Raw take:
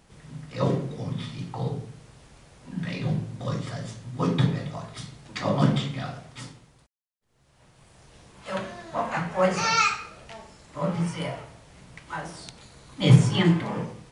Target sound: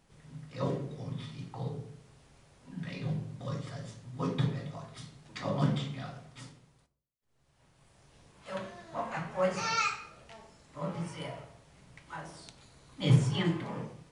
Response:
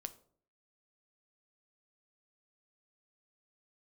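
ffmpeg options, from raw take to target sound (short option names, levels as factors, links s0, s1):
-filter_complex "[1:a]atrim=start_sample=2205[s0];[0:a][s0]afir=irnorm=-1:irlink=0,volume=0.562"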